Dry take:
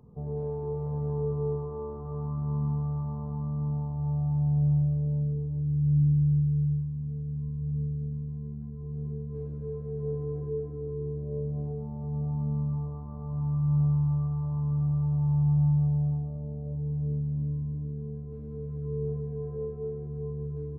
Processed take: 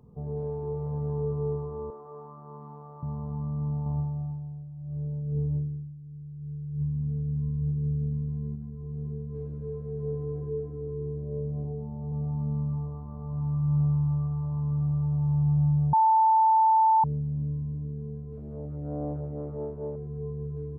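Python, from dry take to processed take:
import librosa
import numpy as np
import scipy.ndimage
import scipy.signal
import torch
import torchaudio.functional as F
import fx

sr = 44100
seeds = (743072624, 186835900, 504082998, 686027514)

y = fx.highpass(x, sr, hz=430.0, slope=12, at=(1.9, 3.03))
y = fx.over_compress(y, sr, threshold_db=-30.0, ratio=-0.5, at=(3.86, 8.56))
y = fx.lowpass(y, sr, hz=1100.0, slope=24, at=(11.64, 12.12))
y = fx.doppler_dist(y, sr, depth_ms=0.88, at=(18.37, 19.96))
y = fx.edit(y, sr, fx.bleep(start_s=15.93, length_s=1.11, hz=885.0, db=-17.0), tone=tone)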